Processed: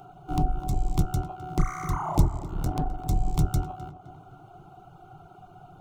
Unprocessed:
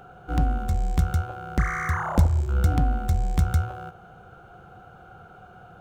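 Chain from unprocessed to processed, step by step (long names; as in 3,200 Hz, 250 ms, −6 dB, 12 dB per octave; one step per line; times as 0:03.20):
sub-octave generator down 1 octave, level −1 dB
phaser with its sweep stopped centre 340 Hz, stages 8
0:02.37–0:03.09: tube saturation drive 19 dB, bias 0.7
reverb reduction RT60 0.65 s
tape delay 256 ms, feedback 60%, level −12 dB, low-pass 2,300 Hz
level +2 dB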